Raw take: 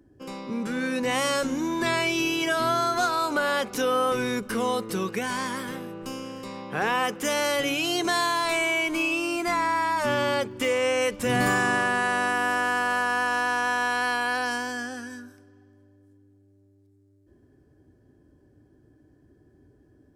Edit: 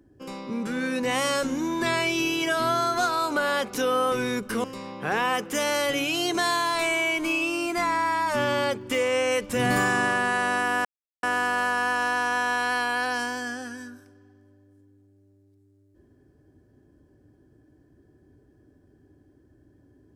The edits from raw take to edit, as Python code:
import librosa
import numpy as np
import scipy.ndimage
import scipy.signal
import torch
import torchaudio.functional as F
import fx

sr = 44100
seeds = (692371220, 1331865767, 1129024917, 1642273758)

y = fx.edit(x, sr, fx.cut(start_s=4.64, length_s=1.7),
    fx.insert_silence(at_s=12.55, length_s=0.38), tone=tone)